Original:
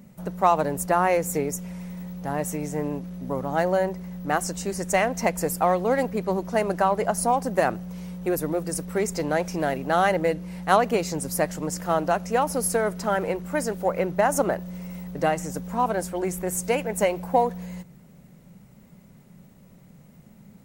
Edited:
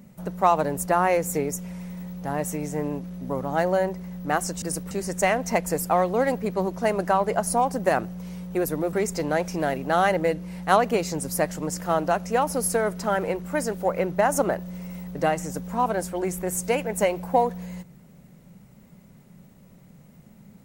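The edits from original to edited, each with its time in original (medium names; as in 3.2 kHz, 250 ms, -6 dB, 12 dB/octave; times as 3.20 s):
8.64–8.93 s: move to 4.62 s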